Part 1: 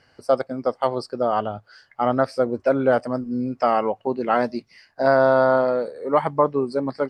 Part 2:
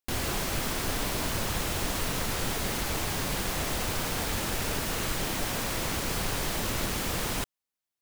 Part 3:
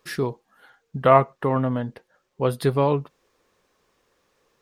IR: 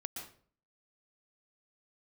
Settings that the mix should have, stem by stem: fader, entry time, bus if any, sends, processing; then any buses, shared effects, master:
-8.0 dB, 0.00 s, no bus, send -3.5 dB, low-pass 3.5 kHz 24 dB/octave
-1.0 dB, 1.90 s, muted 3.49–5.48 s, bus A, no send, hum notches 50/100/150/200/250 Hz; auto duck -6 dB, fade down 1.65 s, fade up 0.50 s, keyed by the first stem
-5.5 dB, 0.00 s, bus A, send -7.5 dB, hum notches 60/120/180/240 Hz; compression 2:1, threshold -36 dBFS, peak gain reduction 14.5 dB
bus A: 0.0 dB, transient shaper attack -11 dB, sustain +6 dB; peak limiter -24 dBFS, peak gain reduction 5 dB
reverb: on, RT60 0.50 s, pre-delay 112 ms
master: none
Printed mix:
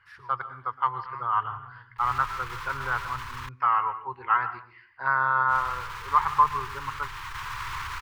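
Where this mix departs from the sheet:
stem 3 -5.5 dB -> -14.0 dB; master: extra FFT filter 120 Hz 0 dB, 230 Hz -29 dB, 390 Hz -15 dB, 640 Hz -26 dB, 1 kHz +10 dB, 10 kHz -14 dB

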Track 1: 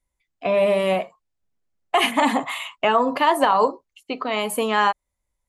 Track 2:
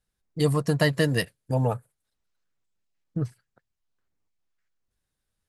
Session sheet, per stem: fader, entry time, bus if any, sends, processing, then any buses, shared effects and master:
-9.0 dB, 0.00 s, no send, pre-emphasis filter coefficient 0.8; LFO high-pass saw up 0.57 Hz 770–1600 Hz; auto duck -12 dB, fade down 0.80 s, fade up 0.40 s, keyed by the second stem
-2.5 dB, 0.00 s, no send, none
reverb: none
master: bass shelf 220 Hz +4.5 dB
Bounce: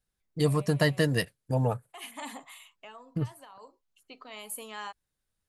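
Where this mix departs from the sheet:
stem 1: missing LFO high-pass saw up 0.57 Hz 770–1600 Hz; master: missing bass shelf 220 Hz +4.5 dB

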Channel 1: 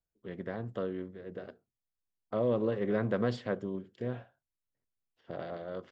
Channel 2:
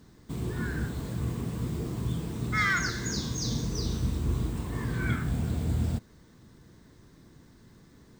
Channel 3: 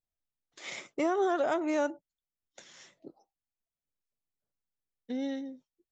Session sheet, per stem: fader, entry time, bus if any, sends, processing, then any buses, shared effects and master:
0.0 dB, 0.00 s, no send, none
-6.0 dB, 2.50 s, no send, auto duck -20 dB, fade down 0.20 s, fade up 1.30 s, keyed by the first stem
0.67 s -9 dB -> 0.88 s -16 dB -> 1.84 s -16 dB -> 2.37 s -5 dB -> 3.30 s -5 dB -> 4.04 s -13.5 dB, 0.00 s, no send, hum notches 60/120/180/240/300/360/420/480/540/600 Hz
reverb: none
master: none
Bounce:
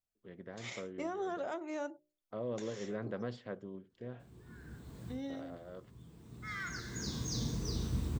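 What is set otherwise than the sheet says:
stem 1 0.0 dB -> -9.5 dB; stem 2: entry 2.50 s -> 3.90 s; stem 3 -9.0 dB -> -3.0 dB

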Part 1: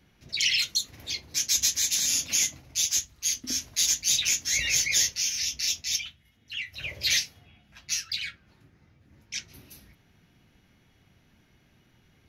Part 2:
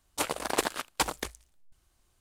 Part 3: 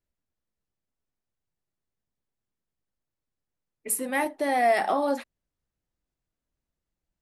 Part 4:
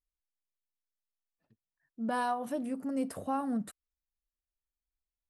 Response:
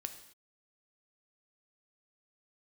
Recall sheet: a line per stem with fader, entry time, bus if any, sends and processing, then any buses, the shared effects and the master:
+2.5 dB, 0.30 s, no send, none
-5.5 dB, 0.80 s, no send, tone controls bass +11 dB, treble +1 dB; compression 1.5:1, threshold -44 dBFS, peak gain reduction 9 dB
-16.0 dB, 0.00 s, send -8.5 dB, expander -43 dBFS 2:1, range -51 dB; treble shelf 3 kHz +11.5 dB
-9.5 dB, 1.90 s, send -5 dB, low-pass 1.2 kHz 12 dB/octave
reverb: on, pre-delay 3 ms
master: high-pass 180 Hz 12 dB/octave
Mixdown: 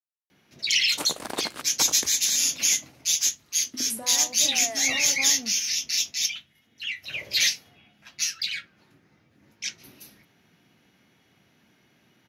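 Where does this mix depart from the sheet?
stem 2 -5.5 dB -> +3.0 dB; stem 3: send off

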